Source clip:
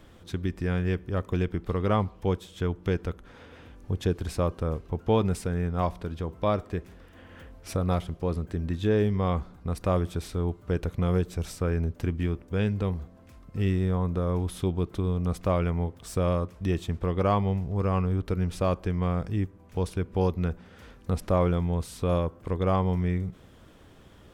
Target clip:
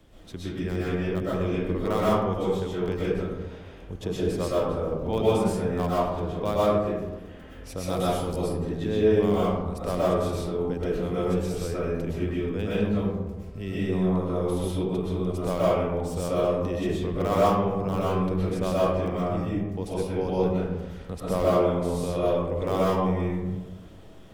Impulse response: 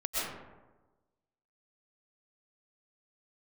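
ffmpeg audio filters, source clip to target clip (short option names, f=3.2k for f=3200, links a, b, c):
-filter_complex "[0:a]asettb=1/sr,asplit=3[a][b][c];[a]atrim=end=7.844[d];[b]atrim=start=7.84:end=8.36,asetpts=PTS-STARTPTS,afade=t=in:d=0.004:c=qsin,afade=t=out:st=0.516:d=0.004:c=qsin,bass=f=250:g=2,treble=f=4k:g=15[e];[c]atrim=start=8.356[f];[d][e]acrossfade=d=0.004:c1=hsin:c2=qsin[g];[g][f]acrossfade=d=0.004:c1=qsin:c2=hsin,acrossover=split=200|1200|1600[h][i][j][k];[h]alimiter=level_in=5dB:limit=-24dB:level=0:latency=1:release=63,volume=-5dB[l];[j]acrusher=bits=5:mix=0:aa=0.000001[m];[l][i][m][k]amix=inputs=4:normalize=0[n];[1:a]atrim=start_sample=2205[o];[n][o]afir=irnorm=-1:irlink=0,volume=-2.5dB"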